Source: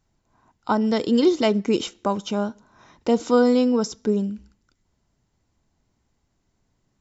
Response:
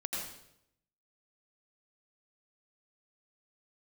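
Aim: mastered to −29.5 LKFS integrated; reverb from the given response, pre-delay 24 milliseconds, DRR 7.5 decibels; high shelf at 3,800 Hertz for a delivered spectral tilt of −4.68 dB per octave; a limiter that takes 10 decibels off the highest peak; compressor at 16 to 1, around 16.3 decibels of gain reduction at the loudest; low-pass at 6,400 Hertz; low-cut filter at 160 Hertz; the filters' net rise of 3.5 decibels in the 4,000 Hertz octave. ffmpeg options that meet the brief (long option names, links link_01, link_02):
-filter_complex "[0:a]highpass=160,lowpass=6400,highshelf=frequency=3800:gain=-4,equalizer=frequency=4000:width_type=o:gain=8,acompressor=threshold=-29dB:ratio=16,alimiter=level_in=3.5dB:limit=-24dB:level=0:latency=1,volume=-3.5dB,asplit=2[link_01][link_02];[1:a]atrim=start_sample=2205,adelay=24[link_03];[link_02][link_03]afir=irnorm=-1:irlink=0,volume=-10.5dB[link_04];[link_01][link_04]amix=inputs=2:normalize=0,volume=6.5dB"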